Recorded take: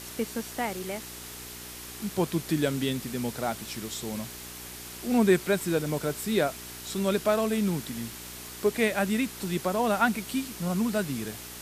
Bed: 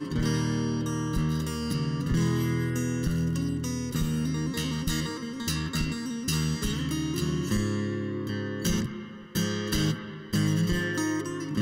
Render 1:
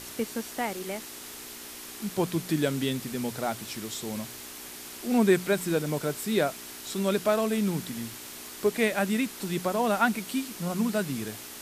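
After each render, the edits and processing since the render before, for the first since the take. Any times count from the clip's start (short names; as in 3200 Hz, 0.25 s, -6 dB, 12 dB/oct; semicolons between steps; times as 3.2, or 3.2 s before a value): de-hum 60 Hz, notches 3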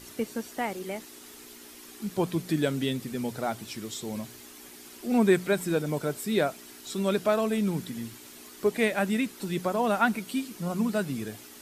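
denoiser 8 dB, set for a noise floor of -43 dBFS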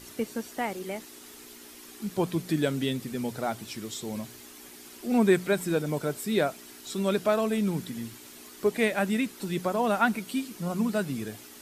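nothing audible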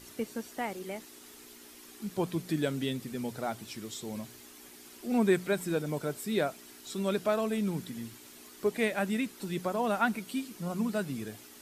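gain -4 dB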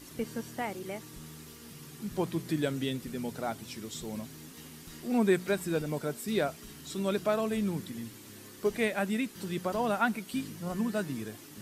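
add bed -21.5 dB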